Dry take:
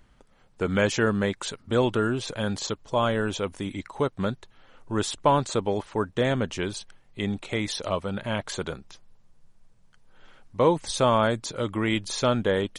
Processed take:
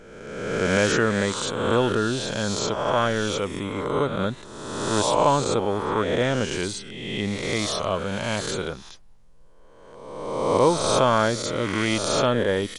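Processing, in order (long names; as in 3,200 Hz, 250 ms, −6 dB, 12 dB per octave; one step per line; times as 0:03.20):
peak hold with a rise ahead of every peak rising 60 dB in 1.41 s
level that may rise only so fast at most 100 dB per second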